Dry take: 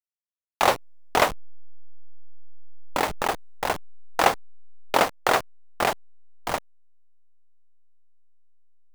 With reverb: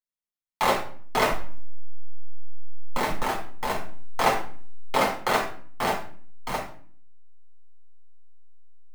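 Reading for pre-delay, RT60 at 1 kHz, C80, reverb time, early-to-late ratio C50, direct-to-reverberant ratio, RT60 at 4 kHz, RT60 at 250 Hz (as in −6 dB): 6 ms, 0.45 s, 11.5 dB, 0.45 s, 7.0 dB, −3.0 dB, 0.40 s, 0.75 s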